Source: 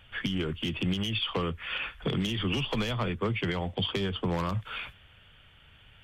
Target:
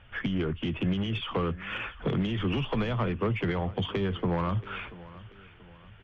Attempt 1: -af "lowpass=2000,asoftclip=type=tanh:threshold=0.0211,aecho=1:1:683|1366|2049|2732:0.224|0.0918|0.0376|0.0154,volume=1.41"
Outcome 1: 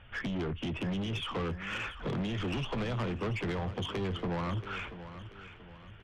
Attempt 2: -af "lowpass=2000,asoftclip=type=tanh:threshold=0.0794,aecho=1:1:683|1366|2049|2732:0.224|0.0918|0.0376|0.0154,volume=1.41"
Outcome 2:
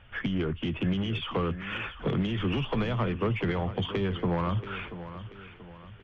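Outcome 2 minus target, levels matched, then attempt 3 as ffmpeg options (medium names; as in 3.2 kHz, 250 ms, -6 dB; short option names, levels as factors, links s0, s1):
echo-to-direct +6 dB
-af "lowpass=2000,asoftclip=type=tanh:threshold=0.0794,aecho=1:1:683|1366|2049:0.112|0.046|0.0189,volume=1.41"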